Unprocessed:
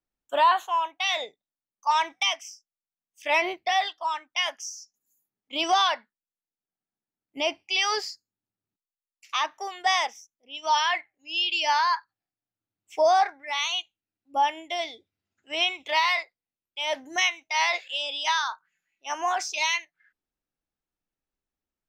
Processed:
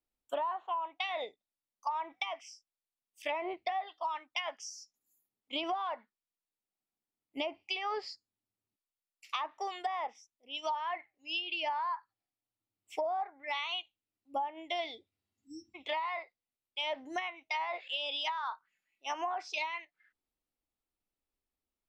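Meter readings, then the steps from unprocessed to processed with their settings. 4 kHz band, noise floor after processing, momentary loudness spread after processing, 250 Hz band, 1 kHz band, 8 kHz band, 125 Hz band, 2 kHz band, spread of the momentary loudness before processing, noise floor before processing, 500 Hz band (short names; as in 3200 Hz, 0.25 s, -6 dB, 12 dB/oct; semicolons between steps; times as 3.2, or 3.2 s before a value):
-12.0 dB, under -85 dBFS, 11 LU, -5.0 dB, -10.5 dB, -18.0 dB, n/a, -12.5 dB, 12 LU, under -85 dBFS, -8.5 dB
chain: treble ducked by the level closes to 1300 Hz, closed at -21 dBFS; spectral repair 15.26–15.72, 340–5200 Hz before; thirty-one-band EQ 160 Hz -9 dB, 1600 Hz -7 dB, 6300 Hz -8 dB; compressor 10:1, threshold -30 dBFS, peak gain reduction 13 dB; gain -1.5 dB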